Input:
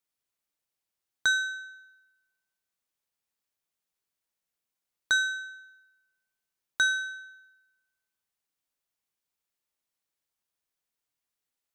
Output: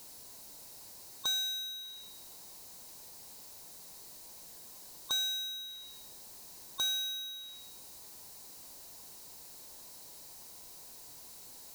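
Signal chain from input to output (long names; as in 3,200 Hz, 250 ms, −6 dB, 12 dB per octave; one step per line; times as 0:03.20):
linear-phase brick-wall band-stop 1,100–3,700 Hz
power curve on the samples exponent 0.35
level −6.5 dB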